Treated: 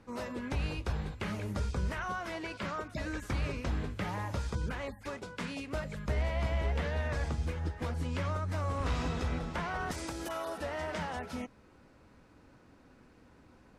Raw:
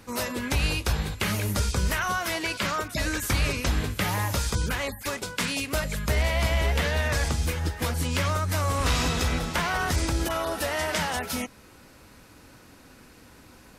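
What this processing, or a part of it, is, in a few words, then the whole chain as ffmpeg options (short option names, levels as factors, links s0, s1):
through cloth: -filter_complex "[0:a]lowpass=8700,highshelf=f=2300:g=-13,asettb=1/sr,asplit=3[s0][s1][s2];[s0]atrim=end=9.914[s3];[s1]atrim=start=9.91:end=10.58,asetpts=PTS-STARTPTS,afade=t=in:d=0.004:c=qsin,afade=t=out:st=0.666:d=0.004:c=qsin,aemphasis=mode=production:type=bsi[s4];[s2]atrim=start=10.576[s5];[s3][s4]acrossfade=d=0.004:c1=hsin:c2=qsin[s6];[s6][s5]acrossfade=d=0.004:c1=qsin:c2=hsin,bandreject=f=50:t=h:w=6,bandreject=f=100:t=h:w=6,volume=0.473"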